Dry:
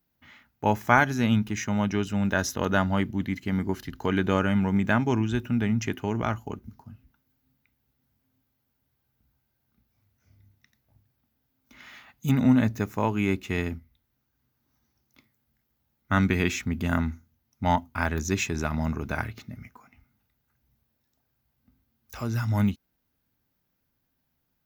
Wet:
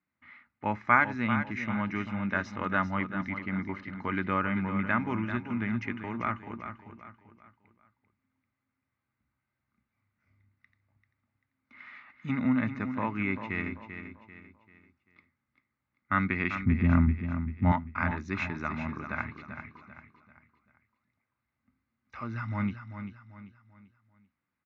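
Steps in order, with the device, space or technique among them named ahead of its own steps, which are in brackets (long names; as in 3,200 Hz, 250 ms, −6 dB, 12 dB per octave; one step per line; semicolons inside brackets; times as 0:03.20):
0:16.55–0:17.72: spectral tilt −4.5 dB per octave
guitar cabinet (loudspeaker in its box 100–3,700 Hz, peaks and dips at 140 Hz −6 dB, 430 Hz −8 dB, 720 Hz −5 dB, 1,200 Hz +8 dB, 2,100 Hz +9 dB, 3,200 Hz −9 dB)
repeating echo 391 ms, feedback 38%, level −9.5 dB
level −5.5 dB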